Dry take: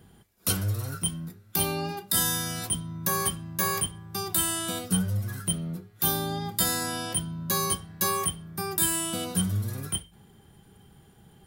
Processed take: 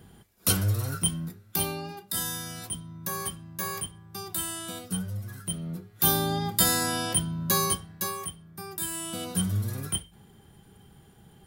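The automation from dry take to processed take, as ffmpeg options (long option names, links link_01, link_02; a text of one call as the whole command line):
ffmpeg -i in.wav -af "volume=20dB,afade=type=out:start_time=1.24:duration=0.59:silence=0.375837,afade=type=in:start_time=5.44:duration=0.65:silence=0.354813,afade=type=out:start_time=7.48:duration=0.68:silence=0.281838,afade=type=in:start_time=8.87:duration=0.72:silence=0.375837" out.wav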